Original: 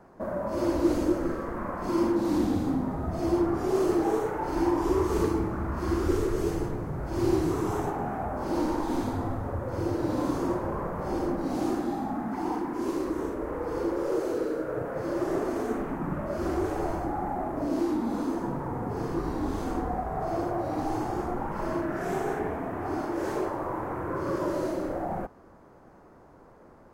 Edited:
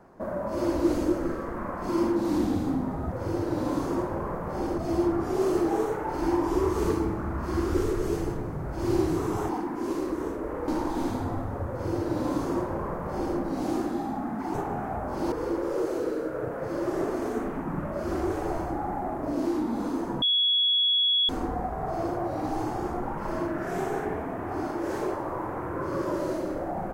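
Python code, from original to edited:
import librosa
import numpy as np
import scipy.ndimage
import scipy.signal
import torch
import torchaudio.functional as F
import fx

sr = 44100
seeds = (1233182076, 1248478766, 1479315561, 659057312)

y = fx.edit(x, sr, fx.swap(start_s=7.83, length_s=0.78, other_s=12.47, other_length_s=1.19),
    fx.duplicate(start_s=9.64, length_s=1.66, to_s=3.12),
    fx.bleep(start_s=18.56, length_s=1.07, hz=3360.0, db=-20.0), tone=tone)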